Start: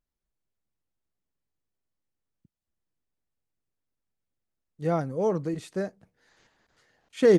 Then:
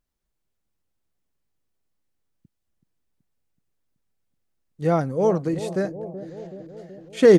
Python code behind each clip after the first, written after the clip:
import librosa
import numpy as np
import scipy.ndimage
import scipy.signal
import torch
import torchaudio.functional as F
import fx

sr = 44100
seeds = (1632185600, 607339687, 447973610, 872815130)

y = fx.echo_bbd(x, sr, ms=377, stages=2048, feedback_pct=67, wet_db=-12)
y = y * librosa.db_to_amplitude(5.5)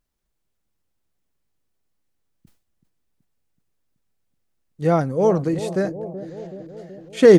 y = fx.sustainer(x, sr, db_per_s=130.0)
y = y * librosa.db_to_amplitude(2.5)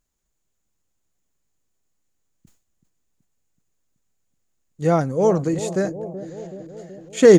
y = fx.peak_eq(x, sr, hz=6900.0, db=13.5, octaves=0.25)